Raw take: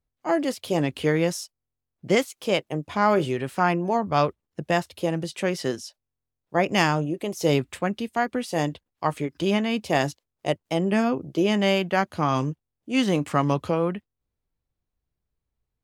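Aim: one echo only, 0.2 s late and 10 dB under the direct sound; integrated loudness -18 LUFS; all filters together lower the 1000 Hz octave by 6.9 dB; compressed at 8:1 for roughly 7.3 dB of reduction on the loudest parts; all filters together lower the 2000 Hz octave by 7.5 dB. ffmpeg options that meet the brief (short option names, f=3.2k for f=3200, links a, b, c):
-af "equalizer=f=1k:t=o:g=-8.5,equalizer=f=2k:t=o:g=-7,acompressor=threshold=-25dB:ratio=8,aecho=1:1:200:0.316,volume=13.5dB"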